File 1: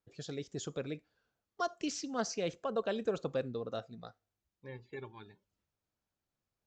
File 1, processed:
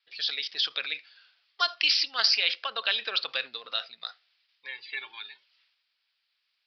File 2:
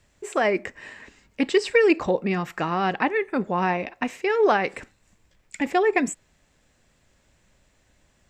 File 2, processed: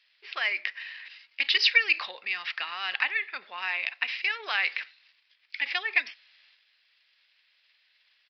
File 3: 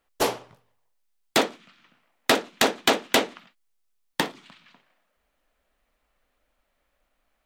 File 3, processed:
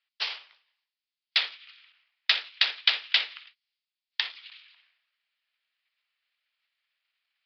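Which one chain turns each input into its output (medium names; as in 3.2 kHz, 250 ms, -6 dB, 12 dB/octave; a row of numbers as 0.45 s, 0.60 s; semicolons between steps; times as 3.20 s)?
transient shaper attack +3 dB, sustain +8 dB; Butterworth band-pass 4 kHz, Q 0.83; resampled via 11.025 kHz; normalise loudness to -27 LUFS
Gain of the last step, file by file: +20.5 dB, +5.0 dB, 0.0 dB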